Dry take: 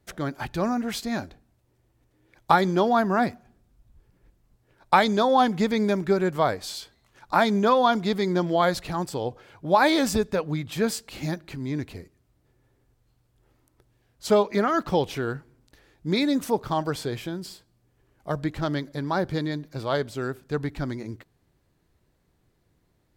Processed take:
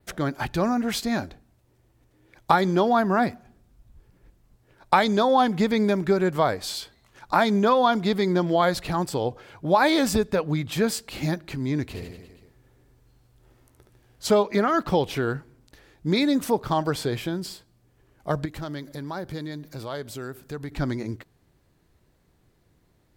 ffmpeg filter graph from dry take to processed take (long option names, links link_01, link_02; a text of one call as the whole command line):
ffmpeg -i in.wav -filter_complex "[0:a]asettb=1/sr,asplit=3[link_01][link_02][link_03];[link_01]atrim=end=11.834[link_04];[link_02]atrim=start=11.83:end=14.29,asetpts=PTS-STARTPTS,afade=type=in:duration=0.004:curve=qsin,afade=type=out:start_time=2.456:duration=0.004:curve=qsin,asplit=2[link_05][link_06];[link_06]adelay=16,volume=-11.5dB[link_07];[link_05][link_07]amix=inputs=2:normalize=0,atrim=end_sample=108486,aecho=1:1:70|150.5|243.1|349.5|472:0.631|0.398|0.251|0.158|0.1,atrim=end_sample=108486[link_08];[link_03]atrim=start=14.286[link_09];[link_04][link_08]acrossfade=duration=0.004:curve1=hsin:curve2=qsin[link_10];[link_10][link_09]acrossfade=duration=0.004:curve1=qsin:curve2=hsin,asettb=1/sr,asplit=3[link_11][link_12][link_13];[link_11]atrim=end=18.454[link_14];[link_12]atrim=start=18.45:end=20.72,asetpts=PTS-STARTPTS,afade=type=in:duration=0.004:curve=qsin,afade=type=out:start_time=2.266:duration=0.004:curve=qsin,highshelf=frequency=9200:gain=11.5,acompressor=threshold=-42dB:ratio=2:attack=3.2:release=140:knee=1:detection=peak[link_15];[link_13]atrim=start=20.716[link_16];[link_14][link_15]acrossfade=duration=0.004:curve1=hsin:curve2=qsin[link_17];[link_17][link_16]acrossfade=duration=0.004:curve1=qsin:curve2=hsin,adynamicequalizer=threshold=0.00282:dfrequency=6300:dqfactor=2.4:tfrequency=6300:tqfactor=2.4:attack=5:release=100:ratio=0.375:range=2:mode=cutabove:tftype=bell,acompressor=threshold=-26dB:ratio=1.5,volume=4dB" out.wav